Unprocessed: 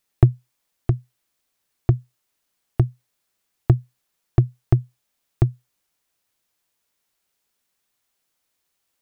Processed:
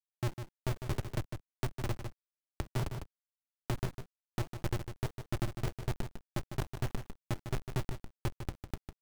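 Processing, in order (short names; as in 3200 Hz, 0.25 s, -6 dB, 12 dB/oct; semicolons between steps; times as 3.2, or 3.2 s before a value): regenerating reverse delay 0.472 s, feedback 53%, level -5.5 dB; recorder AGC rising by 21 dB/s; HPF 190 Hz 12 dB/oct; band shelf 650 Hz -14.5 dB 2.4 oct; notch 790 Hz, Q 21; Schmitt trigger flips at -23.5 dBFS; flange 1.7 Hz, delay 1.7 ms, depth 9.2 ms, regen -66%; companded quantiser 4-bit; echo 0.152 s -9 dB; 0.9–3.76 three-band squash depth 70%; gain +1.5 dB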